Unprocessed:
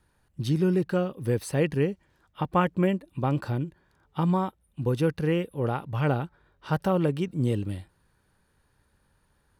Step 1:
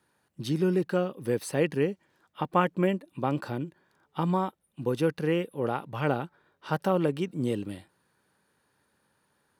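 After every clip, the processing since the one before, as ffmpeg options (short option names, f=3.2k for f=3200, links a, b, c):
-af "highpass=190"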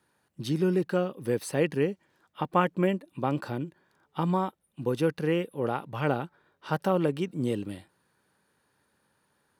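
-af anull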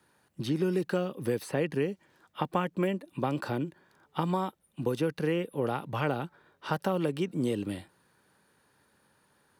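-filter_complex "[0:a]acrossover=split=240|2900[a][b][c];[a]acompressor=threshold=-39dB:ratio=4[d];[b]acompressor=threshold=-32dB:ratio=4[e];[c]acompressor=threshold=-50dB:ratio=4[f];[d][e][f]amix=inputs=3:normalize=0,volume=4dB"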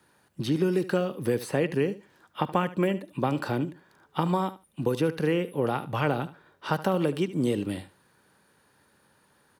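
-af "aecho=1:1:74|148:0.168|0.0269,volume=3.5dB"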